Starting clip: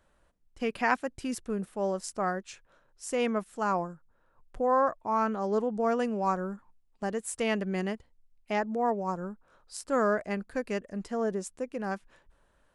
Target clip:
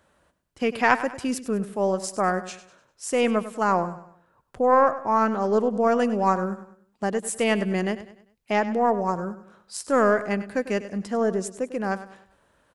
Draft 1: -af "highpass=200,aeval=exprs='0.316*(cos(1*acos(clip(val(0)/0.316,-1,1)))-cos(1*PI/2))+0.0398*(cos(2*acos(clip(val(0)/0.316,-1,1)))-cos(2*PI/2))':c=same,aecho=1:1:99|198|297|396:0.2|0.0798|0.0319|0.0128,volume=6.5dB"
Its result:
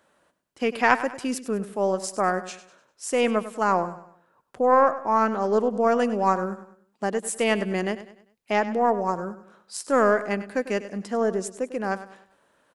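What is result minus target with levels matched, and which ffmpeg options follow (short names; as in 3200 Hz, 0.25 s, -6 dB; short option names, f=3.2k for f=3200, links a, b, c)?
125 Hz band -2.5 dB
-af "highpass=83,aeval=exprs='0.316*(cos(1*acos(clip(val(0)/0.316,-1,1)))-cos(1*PI/2))+0.0398*(cos(2*acos(clip(val(0)/0.316,-1,1)))-cos(2*PI/2))':c=same,aecho=1:1:99|198|297|396:0.2|0.0798|0.0319|0.0128,volume=6.5dB"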